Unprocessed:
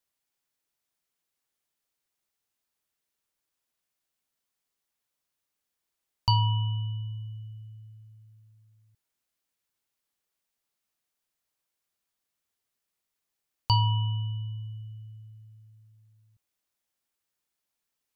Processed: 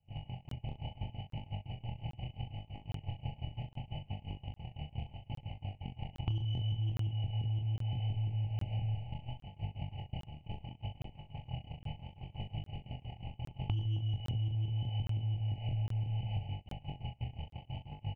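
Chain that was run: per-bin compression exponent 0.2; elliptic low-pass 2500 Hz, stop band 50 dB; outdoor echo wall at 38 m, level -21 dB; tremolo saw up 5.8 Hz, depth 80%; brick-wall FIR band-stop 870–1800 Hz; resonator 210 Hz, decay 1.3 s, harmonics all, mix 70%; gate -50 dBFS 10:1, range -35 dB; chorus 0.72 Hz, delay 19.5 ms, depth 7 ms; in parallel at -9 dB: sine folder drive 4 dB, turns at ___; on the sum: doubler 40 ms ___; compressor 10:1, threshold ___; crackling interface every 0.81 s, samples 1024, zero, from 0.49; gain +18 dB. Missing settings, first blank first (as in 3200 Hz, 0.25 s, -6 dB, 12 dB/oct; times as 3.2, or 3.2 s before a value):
-31 dBFS, -7 dB, -50 dBFS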